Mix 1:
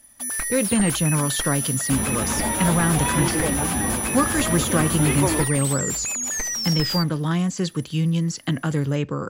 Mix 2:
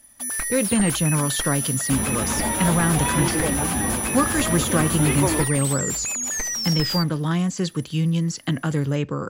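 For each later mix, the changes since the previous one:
second sound: remove low-pass filter 9,600 Hz 24 dB per octave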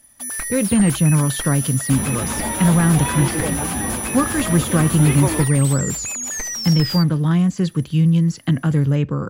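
speech: add bass and treble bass +8 dB, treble −6 dB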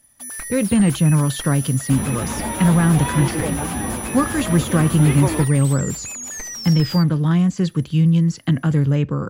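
first sound −4.5 dB
second sound: add high-frequency loss of the air 75 metres

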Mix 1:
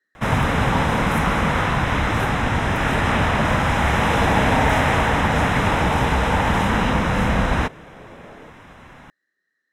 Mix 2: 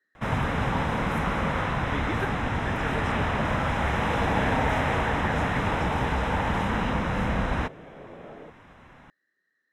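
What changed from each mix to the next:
first sound −7.0 dB
master: add high-shelf EQ 5,500 Hz −8 dB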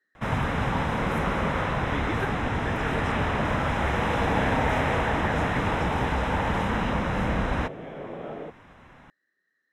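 second sound +7.5 dB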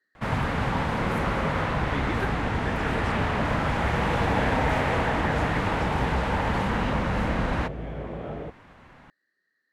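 second sound: remove high-pass filter 220 Hz 12 dB per octave
master: remove Butterworth band-reject 4,500 Hz, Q 6.2

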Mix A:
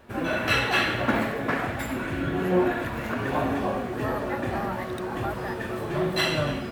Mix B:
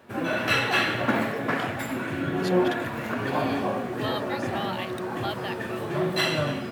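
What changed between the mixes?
speech: remove linear-phase brick-wall band-stop 2,100–11,000 Hz
master: add high-pass filter 100 Hz 24 dB per octave

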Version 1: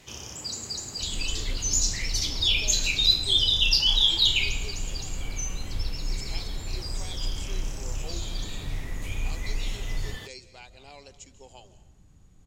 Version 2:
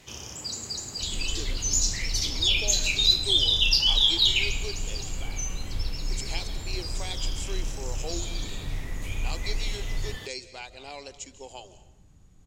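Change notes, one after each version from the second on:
speech +7.0 dB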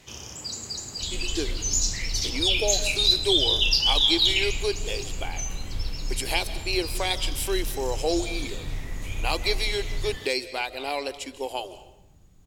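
speech: remove transistor ladder low-pass 7,200 Hz, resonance 75%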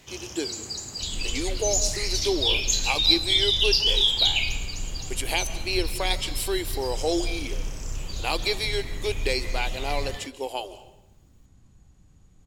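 speech: entry −1.00 s

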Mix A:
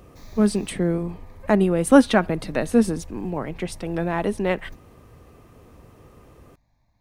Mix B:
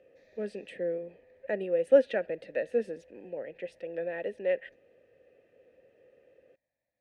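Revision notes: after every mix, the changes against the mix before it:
master: add formant filter e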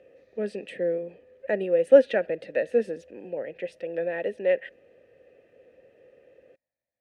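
speech +5.5 dB
background −4.5 dB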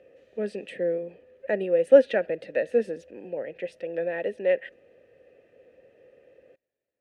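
background: remove phaser with its sweep stopped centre 2,000 Hz, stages 8

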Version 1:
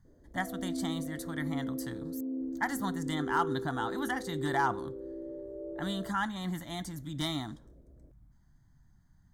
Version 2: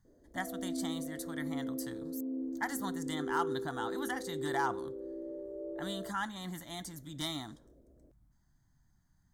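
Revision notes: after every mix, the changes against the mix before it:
speech −4.0 dB
master: add bass and treble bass −4 dB, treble +5 dB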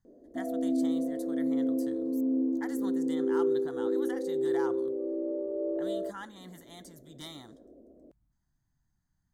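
speech −7.0 dB
background +9.5 dB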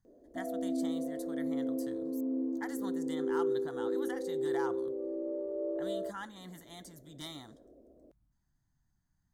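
background: add spectral tilt +3 dB per octave

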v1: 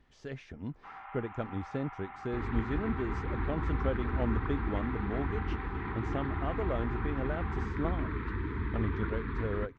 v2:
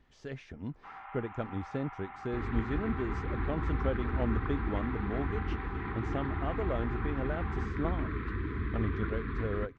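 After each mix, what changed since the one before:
second sound: add Butterworth band-reject 910 Hz, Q 6.5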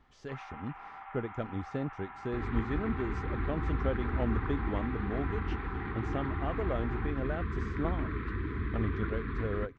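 first sound: entry −0.55 s

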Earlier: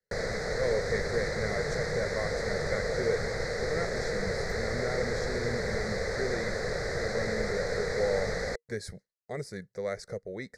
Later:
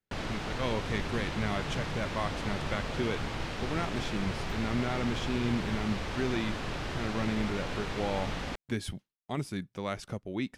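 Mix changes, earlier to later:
speech +5.0 dB
master: remove drawn EQ curve 190 Hz 0 dB, 300 Hz −9 dB, 470 Hz +15 dB, 980 Hz −7 dB, 2,000 Hz +10 dB, 2,900 Hz −29 dB, 4,100 Hz +6 dB, 7,700 Hz +6 dB, 12,000 Hz −1 dB

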